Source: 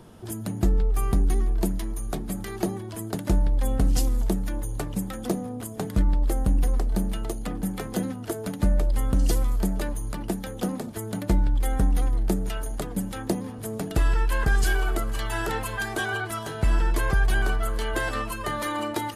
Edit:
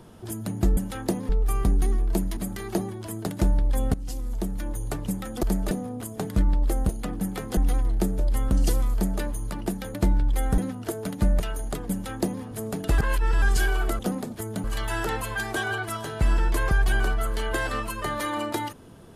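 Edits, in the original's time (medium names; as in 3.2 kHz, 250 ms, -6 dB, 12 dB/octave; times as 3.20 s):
1.85–2.25 s: delete
3.82–4.70 s: fade in, from -17 dB
6.49–7.31 s: delete
7.99–8.81 s: swap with 11.85–12.47 s
9.56–9.84 s: copy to 5.31 s
10.56–11.21 s: move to 15.06 s
12.98–13.50 s: copy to 0.77 s
14.05–14.49 s: reverse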